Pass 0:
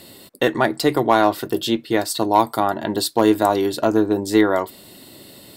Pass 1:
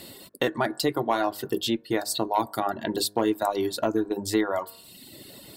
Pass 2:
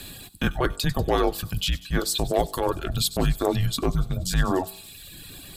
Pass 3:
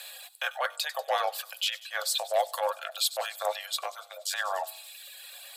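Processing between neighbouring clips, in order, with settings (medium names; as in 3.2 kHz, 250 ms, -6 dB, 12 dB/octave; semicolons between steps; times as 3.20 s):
de-hum 51.46 Hz, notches 35; reverb removal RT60 0.91 s; compression 2:1, threshold -26 dBFS, peak gain reduction 9 dB
feedback echo behind a high-pass 95 ms, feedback 71%, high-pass 4.5 kHz, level -16 dB; frequency shift -280 Hz; transient shaper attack -7 dB, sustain +1 dB; trim +4.5 dB
rippled Chebyshev high-pass 520 Hz, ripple 3 dB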